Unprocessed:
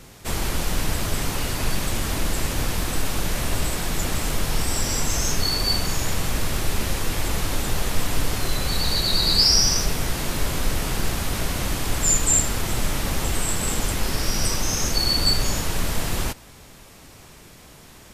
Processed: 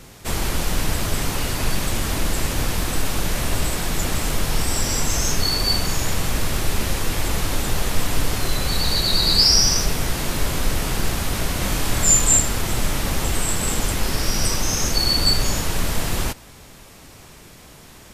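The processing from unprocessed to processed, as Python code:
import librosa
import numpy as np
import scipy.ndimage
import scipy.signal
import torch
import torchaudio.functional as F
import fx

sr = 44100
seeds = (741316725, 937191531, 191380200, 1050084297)

y = fx.room_flutter(x, sr, wall_m=4.4, rt60_s=0.27, at=(11.59, 12.37))
y = y * librosa.db_to_amplitude(2.0)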